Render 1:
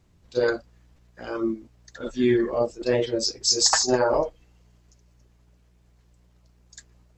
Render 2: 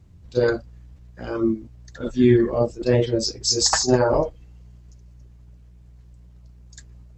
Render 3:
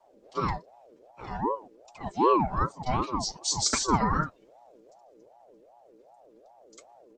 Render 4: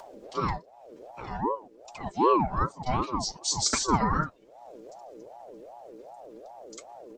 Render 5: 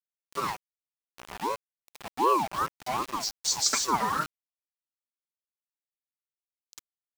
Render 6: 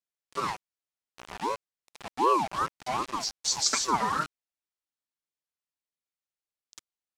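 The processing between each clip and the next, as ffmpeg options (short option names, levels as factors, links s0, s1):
-af "equalizer=f=82:w=0.4:g=13.5"
-filter_complex "[0:a]aecho=1:1:5:0.95,acrossover=split=120|430|3300[s0][s1][s2][s3];[s0]acompressor=threshold=0.00631:ratio=6[s4];[s4][s1][s2][s3]amix=inputs=4:normalize=0,aeval=exprs='val(0)*sin(2*PI*580*n/s+580*0.35/2.6*sin(2*PI*2.6*n/s))':c=same,volume=0.447"
-af "acompressor=mode=upward:threshold=0.0178:ratio=2.5"
-af "highpass=f=670:p=1,aeval=exprs='val(0)*gte(abs(val(0)),0.0188)':c=same,volume=1.19"
-af "lowpass=9000"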